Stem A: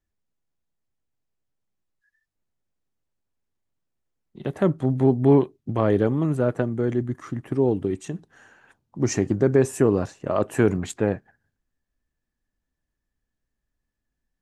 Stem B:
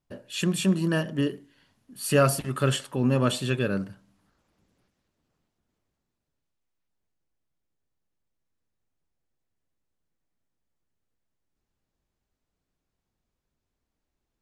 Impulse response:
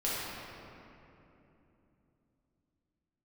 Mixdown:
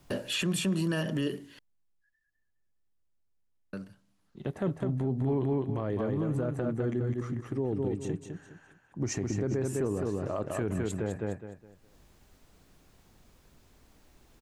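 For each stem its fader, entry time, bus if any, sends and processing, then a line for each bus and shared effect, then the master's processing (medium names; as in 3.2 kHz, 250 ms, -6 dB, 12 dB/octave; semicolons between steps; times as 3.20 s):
-6.5 dB, 0.00 s, no send, echo send -5.5 dB, bass shelf 83 Hz +8.5 dB
+1.0 dB, 0.00 s, muted 1.59–3.73 s, no send, no echo send, three bands compressed up and down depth 70%; auto duck -23 dB, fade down 1.25 s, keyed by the first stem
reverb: none
echo: feedback delay 206 ms, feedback 28%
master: peak limiter -21.5 dBFS, peak gain reduction 11 dB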